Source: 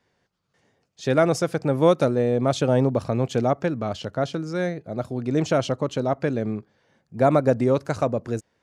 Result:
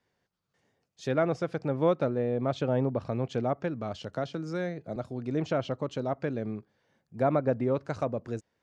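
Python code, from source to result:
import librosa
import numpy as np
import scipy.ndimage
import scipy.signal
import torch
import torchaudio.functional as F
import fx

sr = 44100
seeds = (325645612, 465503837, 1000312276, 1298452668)

y = fx.env_lowpass_down(x, sr, base_hz=2900.0, full_db=-17.0)
y = fx.band_squash(y, sr, depth_pct=70, at=(4.13, 4.96))
y = F.gain(torch.from_numpy(y), -7.5).numpy()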